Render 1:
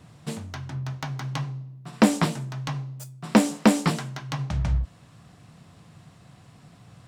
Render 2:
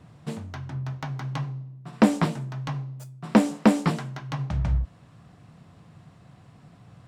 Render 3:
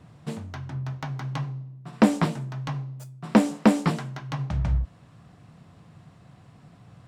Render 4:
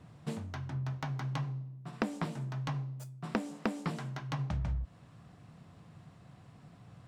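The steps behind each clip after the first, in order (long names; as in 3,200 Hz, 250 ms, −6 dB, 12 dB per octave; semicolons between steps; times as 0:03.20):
high-shelf EQ 3,000 Hz −9 dB
no processing that can be heard
downward compressor 8 to 1, threshold −26 dBFS, peak gain reduction 15 dB; level −4 dB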